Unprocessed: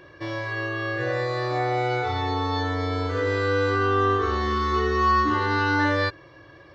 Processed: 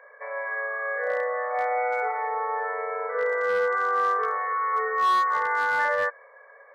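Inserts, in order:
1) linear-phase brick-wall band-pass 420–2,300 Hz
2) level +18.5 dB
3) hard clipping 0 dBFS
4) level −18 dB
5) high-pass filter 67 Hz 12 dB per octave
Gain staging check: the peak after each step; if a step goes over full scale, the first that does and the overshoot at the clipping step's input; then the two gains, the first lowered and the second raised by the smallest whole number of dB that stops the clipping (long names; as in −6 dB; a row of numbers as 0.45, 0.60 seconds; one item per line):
−13.5, +5.0, 0.0, −18.0, −17.0 dBFS
step 2, 5.0 dB
step 2 +13.5 dB, step 4 −13 dB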